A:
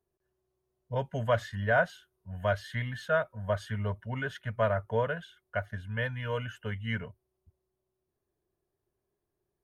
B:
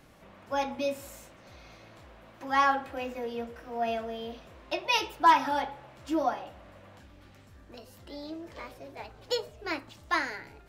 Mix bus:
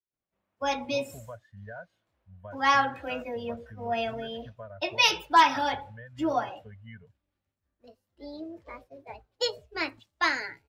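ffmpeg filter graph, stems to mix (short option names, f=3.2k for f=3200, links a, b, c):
-filter_complex "[0:a]acompressor=threshold=-31dB:ratio=2.5,volume=-10.5dB[a];[1:a]agate=range=-33dB:threshold=-42dB:ratio=3:detection=peak,adynamicequalizer=threshold=0.01:dfrequency=1800:dqfactor=0.7:tfrequency=1800:tqfactor=0.7:attack=5:release=100:ratio=0.375:range=3.5:mode=boostabove:tftype=highshelf,adelay=100,volume=0.5dB[b];[a][b]amix=inputs=2:normalize=0,afftdn=nr=14:nf=-42"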